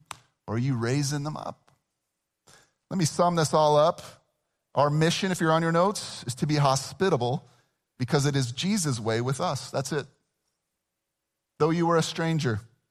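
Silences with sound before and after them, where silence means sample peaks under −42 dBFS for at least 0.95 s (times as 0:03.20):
0:10.05–0:11.60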